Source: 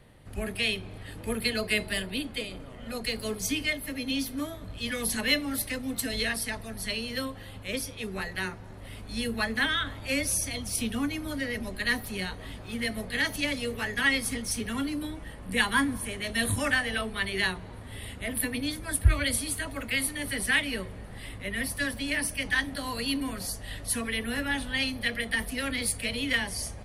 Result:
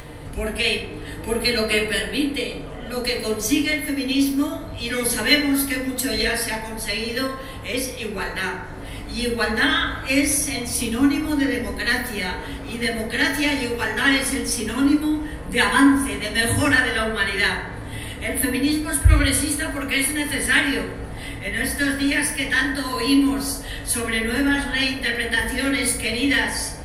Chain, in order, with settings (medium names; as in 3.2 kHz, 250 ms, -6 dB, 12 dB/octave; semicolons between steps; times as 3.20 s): upward compressor, threshold -35 dBFS; FDN reverb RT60 0.97 s, low-frequency decay 0.7×, high-frequency decay 0.45×, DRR -1 dB; trim +5 dB